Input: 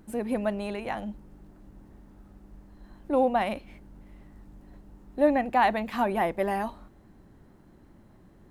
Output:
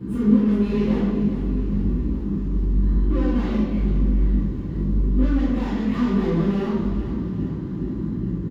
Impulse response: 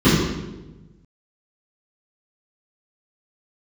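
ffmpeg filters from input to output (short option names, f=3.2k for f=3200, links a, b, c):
-filter_complex "[0:a]lowshelf=f=150:g=2.5,bandreject=f=67.97:t=h:w=4,bandreject=f=135.94:t=h:w=4,bandreject=f=203.91:t=h:w=4,bandreject=f=271.88:t=h:w=4,bandreject=f=339.85:t=h:w=4,bandreject=f=407.82:t=h:w=4,bandreject=f=475.79:t=h:w=4,bandreject=f=543.76:t=h:w=4,bandreject=f=611.73:t=h:w=4,bandreject=f=679.7:t=h:w=4,acompressor=threshold=-38dB:ratio=2.5,aeval=exprs='(tanh(200*val(0)+0.55)-tanh(0.55))/200':c=same,flanger=delay=16:depth=6.5:speed=0.98,acrusher=bits=6:mode=log:mix=0:aa=0.000001,aecho=1:1:414|828|1242|1656|2070|2484|2898:0.266|0.154|0.0895|0.0519|0.0301|0.0175|0.0101[a];[1:a]atrim=start_sample=2205[b];[a][b]afir=irnorm=-1:irlink=0,volume=-4dB"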